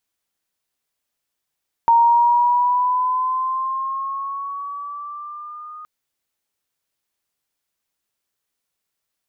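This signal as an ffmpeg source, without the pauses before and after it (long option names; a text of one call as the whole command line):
ffmpeg -f lavfi -i "aevalsrc='pow(10,(-9.5-24*t/3.97)/20)*sin(2*PI*926*3.97/(5*log(2)/12)*(exp(5*log(2)/12*t/3.97)-1))':duration=3.97:sample_rate=44100" out.wav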